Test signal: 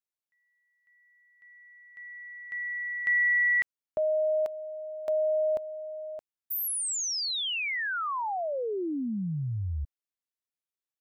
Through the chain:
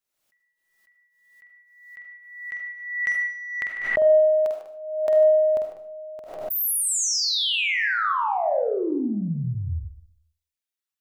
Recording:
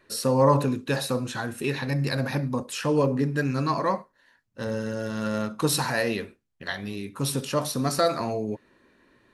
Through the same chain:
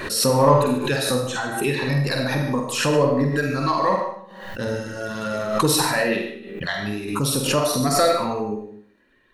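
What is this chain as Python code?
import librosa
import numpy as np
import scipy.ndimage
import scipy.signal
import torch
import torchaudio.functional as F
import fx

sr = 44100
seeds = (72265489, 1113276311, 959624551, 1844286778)

p1 = fx.dereverb_blind(x, sr, rt60_s=1.9)
p2 = 10.0 ** (-27.0 / 20.0) * np.tanh(p1 / 10.0 ** (-27.0 / 20.0))
p3 = p1 + (p2 * librosa.db_to_amplitude(-9.0))
p4 = fx.doubler(p3, sr, ms=48.0, db=-5.5)
p5 = p4 + fx.echo_single(p4, sr, ms=149, db=-13.5, dry=0)
p6 = fx.rev_freeverb(p5, sr, rt60_s=0.47, hf_ratio=0.65, predelay_ms=35, drr_db=4.0)
p7 = fx.pre_swell(p6, sr, db_per_s=58.0)
y = p7 * librosa.db_to_amplitude(2.5)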